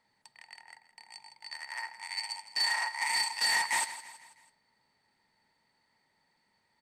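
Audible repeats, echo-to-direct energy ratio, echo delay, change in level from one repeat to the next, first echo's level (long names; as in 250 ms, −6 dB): 4, −13.5 dB, 163 ms, −6.5 dB, −14.5 dB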